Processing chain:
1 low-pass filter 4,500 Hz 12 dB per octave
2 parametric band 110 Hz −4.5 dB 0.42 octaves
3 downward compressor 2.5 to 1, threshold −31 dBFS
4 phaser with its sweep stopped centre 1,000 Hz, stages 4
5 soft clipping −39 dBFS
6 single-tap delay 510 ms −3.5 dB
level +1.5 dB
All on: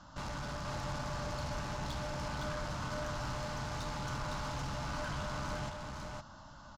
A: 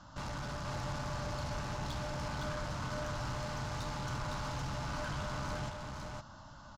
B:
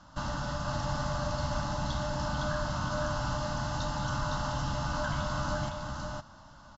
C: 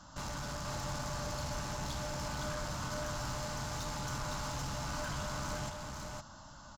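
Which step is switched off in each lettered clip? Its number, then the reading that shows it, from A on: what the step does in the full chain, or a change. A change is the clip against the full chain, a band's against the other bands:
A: 2, 125 Hz band +1.5 dB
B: 5, distortion level −8 dB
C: 1, 8 kHz band +7.0 dB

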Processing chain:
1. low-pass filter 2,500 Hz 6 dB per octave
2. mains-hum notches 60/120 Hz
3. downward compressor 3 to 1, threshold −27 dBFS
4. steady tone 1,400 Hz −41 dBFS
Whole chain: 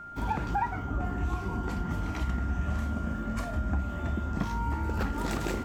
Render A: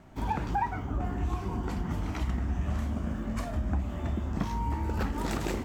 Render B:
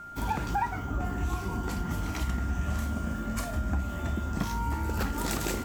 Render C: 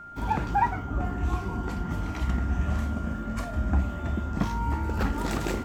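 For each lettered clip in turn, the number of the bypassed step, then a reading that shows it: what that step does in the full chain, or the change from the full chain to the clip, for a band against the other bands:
4, 2 kHz band −2.0 dB
1, 8 kHz band +9.0 dB
3, average gain reduction 2.0 dB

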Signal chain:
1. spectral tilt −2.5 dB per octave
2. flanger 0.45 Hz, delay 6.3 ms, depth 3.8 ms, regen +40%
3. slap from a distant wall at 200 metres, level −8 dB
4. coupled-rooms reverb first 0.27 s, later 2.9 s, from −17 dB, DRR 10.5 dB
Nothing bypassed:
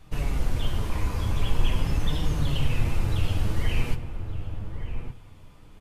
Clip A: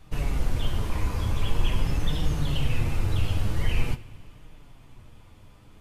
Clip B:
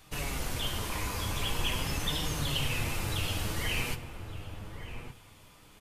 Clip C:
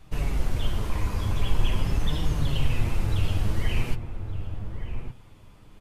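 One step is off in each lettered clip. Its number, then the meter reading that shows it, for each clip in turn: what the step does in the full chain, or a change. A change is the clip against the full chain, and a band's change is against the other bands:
3, change in momentary loudness spread −7 LU
1, 125 Hz band −8.5 dB
4, echo-to-direct ratio −8.0 dB to −11.5 dB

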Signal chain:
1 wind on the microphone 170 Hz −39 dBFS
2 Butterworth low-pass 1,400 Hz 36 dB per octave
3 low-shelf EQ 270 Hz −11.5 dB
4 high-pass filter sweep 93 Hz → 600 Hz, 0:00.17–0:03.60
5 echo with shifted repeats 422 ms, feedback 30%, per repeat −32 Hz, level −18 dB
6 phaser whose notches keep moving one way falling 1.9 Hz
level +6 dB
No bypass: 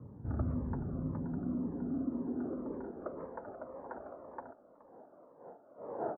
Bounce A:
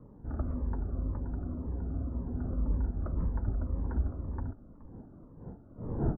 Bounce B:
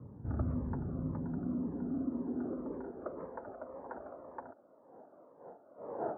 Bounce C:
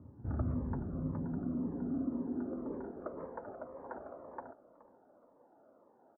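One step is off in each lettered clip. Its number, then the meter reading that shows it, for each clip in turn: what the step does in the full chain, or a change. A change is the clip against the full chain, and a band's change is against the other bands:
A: 4, 125 Hz band +10.5 dB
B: 5, change in momentary loudness spread −1 LU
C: 1, 1 kHz band −2.5 dB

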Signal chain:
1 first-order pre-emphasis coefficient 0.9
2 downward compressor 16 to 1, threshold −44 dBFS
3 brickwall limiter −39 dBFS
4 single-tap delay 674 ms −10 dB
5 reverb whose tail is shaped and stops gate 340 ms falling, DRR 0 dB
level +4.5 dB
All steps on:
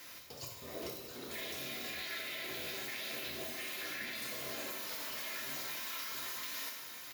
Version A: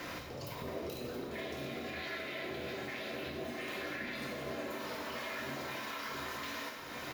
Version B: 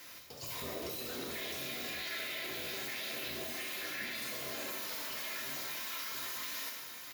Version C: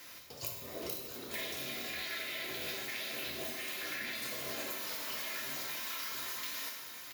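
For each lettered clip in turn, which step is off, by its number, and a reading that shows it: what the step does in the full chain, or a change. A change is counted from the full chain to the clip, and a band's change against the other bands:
1, 8 kHz band −14.0 dB
2, average gain reduction 12.0 dB
3, change in crest factor +4.0 dB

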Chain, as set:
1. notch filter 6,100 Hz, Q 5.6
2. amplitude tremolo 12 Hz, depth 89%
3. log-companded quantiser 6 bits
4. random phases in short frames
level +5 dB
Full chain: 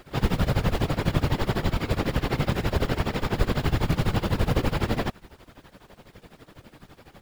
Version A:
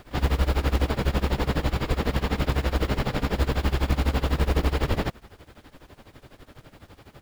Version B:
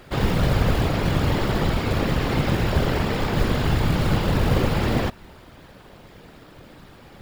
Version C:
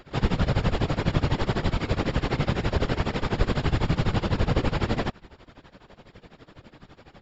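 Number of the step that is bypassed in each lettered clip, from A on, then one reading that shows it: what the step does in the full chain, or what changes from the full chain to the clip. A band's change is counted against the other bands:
4, change in crest factor −4.0 dB
2, change in crest factor −4.0 dB
3, distortion level −25 dB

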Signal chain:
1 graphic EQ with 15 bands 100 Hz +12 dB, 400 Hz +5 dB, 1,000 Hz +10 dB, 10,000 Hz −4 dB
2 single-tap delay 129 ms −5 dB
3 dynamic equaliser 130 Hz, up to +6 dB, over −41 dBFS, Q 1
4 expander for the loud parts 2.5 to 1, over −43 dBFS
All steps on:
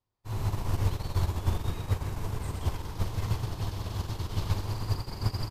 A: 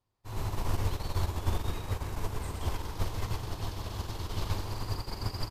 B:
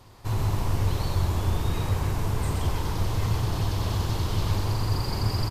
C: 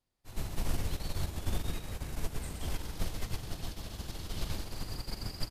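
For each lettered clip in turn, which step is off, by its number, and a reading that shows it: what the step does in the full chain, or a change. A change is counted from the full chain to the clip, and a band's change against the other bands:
3, change in integrated loudness −3.0 LU
4, 125 Hz band −1.5 dB
1, 125 Hz band −7.0 dB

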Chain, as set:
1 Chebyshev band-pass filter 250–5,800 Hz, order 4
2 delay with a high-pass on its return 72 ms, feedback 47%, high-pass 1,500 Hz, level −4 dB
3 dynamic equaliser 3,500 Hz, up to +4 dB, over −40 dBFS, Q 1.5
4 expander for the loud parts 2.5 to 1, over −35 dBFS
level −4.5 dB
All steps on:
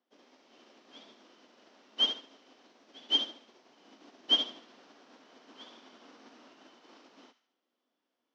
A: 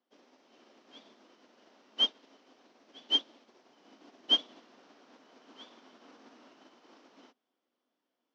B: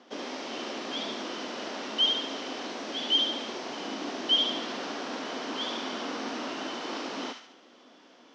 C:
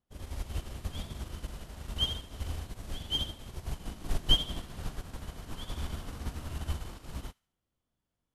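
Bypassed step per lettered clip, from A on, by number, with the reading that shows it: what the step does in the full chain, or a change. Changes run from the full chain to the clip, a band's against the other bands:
2, change in momentary loudness spread −11 LU
4, 4 kHz band −11.5 dB
1, 4 kHz band −6.0 dB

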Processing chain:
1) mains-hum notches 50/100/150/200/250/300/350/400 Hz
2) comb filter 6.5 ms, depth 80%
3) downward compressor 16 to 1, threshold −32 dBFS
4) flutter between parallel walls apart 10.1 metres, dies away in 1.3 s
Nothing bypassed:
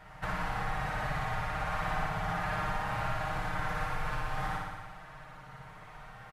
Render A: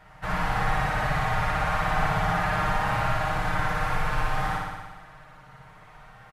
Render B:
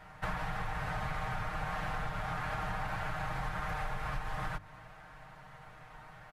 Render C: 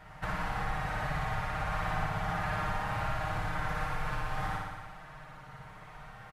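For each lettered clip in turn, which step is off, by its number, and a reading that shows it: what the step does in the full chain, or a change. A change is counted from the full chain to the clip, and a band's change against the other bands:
3, average gain reduction 5.5 dB
4, change in integrated loudness −3.0 LU
1, 125 Hz band +1.5 dB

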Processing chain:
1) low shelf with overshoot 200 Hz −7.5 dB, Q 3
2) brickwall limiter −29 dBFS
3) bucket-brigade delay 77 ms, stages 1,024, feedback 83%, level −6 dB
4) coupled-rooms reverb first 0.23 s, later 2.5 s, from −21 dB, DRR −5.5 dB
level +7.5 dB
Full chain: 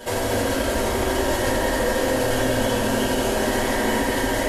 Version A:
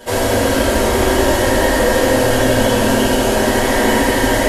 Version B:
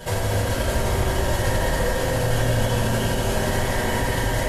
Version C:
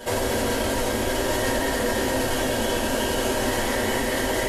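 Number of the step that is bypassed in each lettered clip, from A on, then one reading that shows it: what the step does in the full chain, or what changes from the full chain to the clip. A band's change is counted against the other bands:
2, average gain reduction 7.5 dB
1, 125 Hz band +9.5 dB
3, echo-to-direct ratio 7.5 dB to 5.5 dB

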